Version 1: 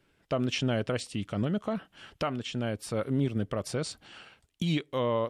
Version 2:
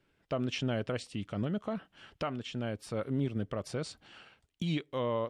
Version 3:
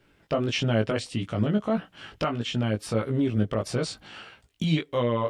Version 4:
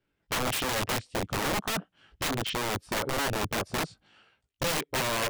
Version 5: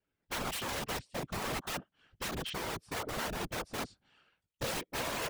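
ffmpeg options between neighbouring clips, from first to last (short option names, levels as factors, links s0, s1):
-af "highshelf=f=8700:g=-10,volume=0.631"
-filter_complex "[0:a]asplit=2[s0][s1];[s1]alimiter=level_in=1.88:limit=0.0631:level=0:latency=1:release=185,volume=0.531,volume=1.12[s2];[s0][s2]amix=inputs=2:normalize=0,flanger=delay=17:depth=2.2:speed=1.6,volume=2.24"
-af "afwtdn=0.0178,aeval=exprs='(mod(15*val(0)+1,2)-1)/15':c=same"
-af "afftfilt=real='hypot(re,im)*cos(2*PI*random(0))':imag='hypot(re,im)*sin(2*PI*random(1))':win_size=512:overlap=0.75,volume=0.841"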